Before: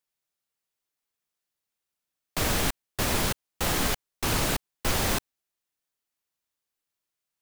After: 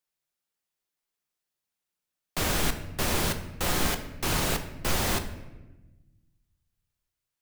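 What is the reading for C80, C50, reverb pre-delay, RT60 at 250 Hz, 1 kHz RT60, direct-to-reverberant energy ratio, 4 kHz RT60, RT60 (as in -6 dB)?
13.0 dB, 11.0 dB, 6 ms, 1.7 s, 0.95 s, 6.5 dB, 0.75 s, 1.1 s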